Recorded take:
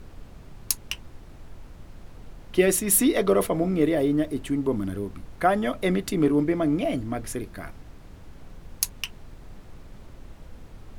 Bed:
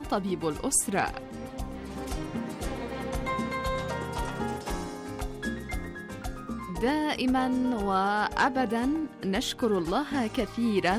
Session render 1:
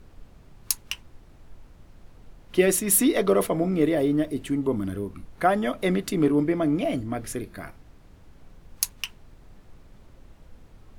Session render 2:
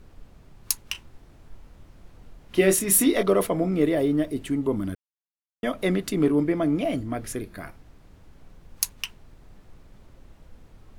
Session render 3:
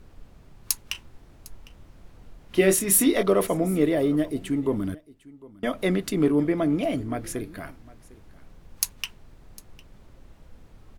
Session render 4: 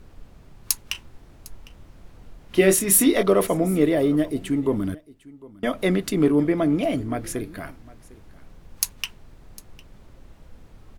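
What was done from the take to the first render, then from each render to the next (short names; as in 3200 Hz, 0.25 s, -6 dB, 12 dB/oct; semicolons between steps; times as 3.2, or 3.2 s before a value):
noise print and reduce 6 dB
0.92–3.23 doubler 26 ms -6 dB; 4.95–5.63 mute
echo 0.754 s -21.5 dB
gain +2.5 dB; limiter -1 dBFS, peak gain reduction 1 dB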